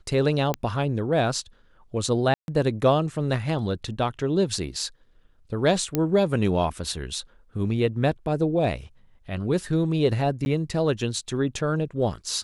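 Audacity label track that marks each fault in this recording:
0.540000	0.540000	click −11 dBFS
2.340000	2.480000	drop-out 141 ms
5.950000	5.950000	click −9 dBFS
10.450000	10.460000	drop-out

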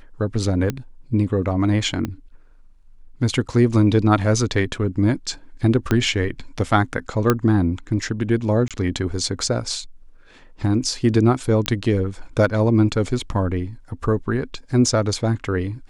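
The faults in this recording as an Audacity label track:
0.700000	0.700000	click −10 dBFS
2.050000	2.050000	click −13 dBFS
5.910000	5.910000	click −6 dBFS
7.300000	7.300000	click −3 dBFS
8.680000	8.710000	drop-out 27 ms
11.660000	11.660000	click −6 dBFS

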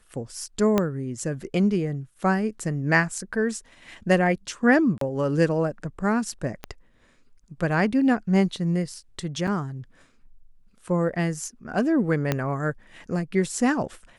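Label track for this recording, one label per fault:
0.780000	0.780000	click −8 dBFS
4.980000	5.010000	drop-out 33 ms
6.640000	6.640000	click −17 dBFS
9.470000	9.480000	drop-out 6.1 ms
12.320000	12.320000	click −9 dBFS

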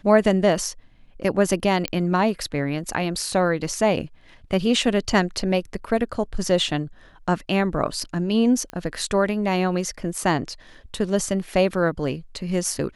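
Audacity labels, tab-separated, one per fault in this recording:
1.880000	1.880000	click −11 dBFS
8.700000	8.700000	click −18 dBFS

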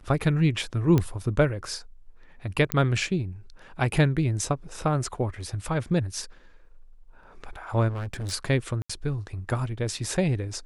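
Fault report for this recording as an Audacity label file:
0.980000	0.980000	click −11 dBFS
2.720000	2.720000	click −7 dBFS
7.880000	8.330000	clipping −29 dBFS
8.820000	8.890000	drop-out 75 ms

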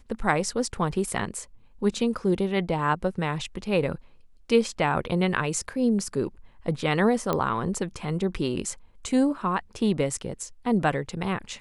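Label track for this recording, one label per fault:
7.330000	7.330000	click −12 dBFS

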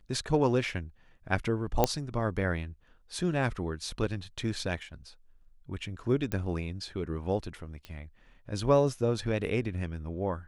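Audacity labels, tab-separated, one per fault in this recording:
1.840000	1.840000	click −8 dBFS
6.320000	6.320000	click −18 dBFS
7.850000	7.850000	click −27 dBFS

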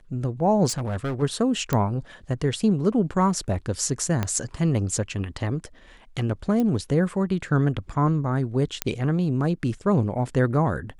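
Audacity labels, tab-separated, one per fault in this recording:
0.680000	1.230000	clipping −24 dBFS
1.730000	1.730000	click −9 dBFS
4.230000	4.230000	click −11 dBFS
6.600000	6.600000	click −15 dBFS
8.820000	8.820000	click −5 dBFS

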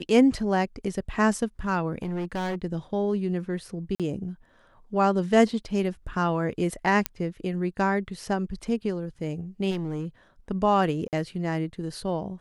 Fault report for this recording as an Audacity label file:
1.980000	2.640000	clipping −26.5 dBFS
3.950000	4.000000	drop-out 47 ms
7.060000	7.060000	click −7 dBFS
9.700000	10.060000	clipping −26 dBFS
11.080000	11.130000	drop-out 48 ms

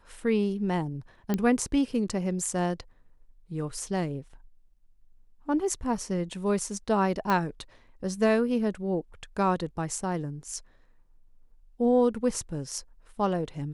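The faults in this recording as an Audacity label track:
1.340000	1.340000	click −14 dBFS
7.300000	7.300000	click −14 dBFS

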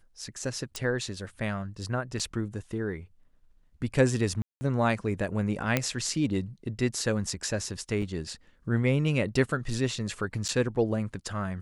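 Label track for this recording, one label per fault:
0.760000	0.760000	click
2.190000	2.200000	drop-out 6.3 ms
4.420000	4.610000	drop-out 190 ms
5.770000	5.770000	click −9 dBFS
8.020000	8.020000	drop-out 3.6 ms
10.480000	10.490000	drop-out 8.4 ms

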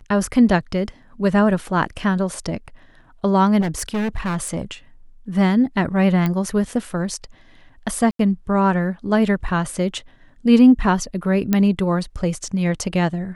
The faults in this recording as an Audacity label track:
3.600000	4.710000	clipping −19 dBFS
6.260000	6.260000	click −10 dBFS
8.110000	8.190000	drop-out 83 ms
11.530000	11.530000	click −5 dBFS

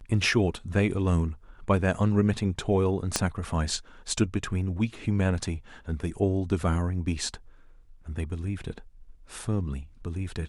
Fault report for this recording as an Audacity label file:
3.160000	3.160000	click −8 dBFS

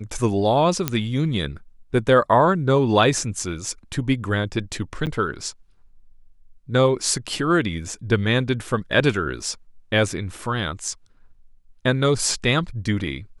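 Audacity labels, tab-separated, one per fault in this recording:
0.880000	0.880000	click −5 dBFS
5.060000	5.070000	drop-out 8.9 ms

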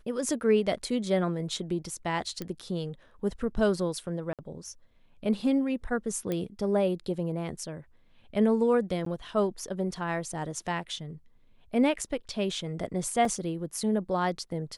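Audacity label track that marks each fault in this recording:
2.420000	2.420000	click −20 dBFS
4.330000	4.390000	drop-out 57 ms
6.320000	6.320000	click −18 dBFS
9.050000	9.060000	drop-out 13 ms
13.250000	13.250000	drop-out 3.1 ms

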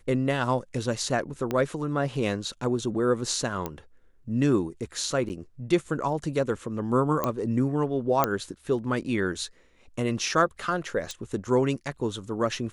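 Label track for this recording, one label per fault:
1.510000	1.510000	click −15 dBFS
3.660000	3.660000	click −16 dBFS
5.290000	5.300000	drop-out 9.2 ms
7.240000	7.240000	click −12 dBFS
8.240000	8.240000	click −7 dBFS
11.110000	11.110000	click

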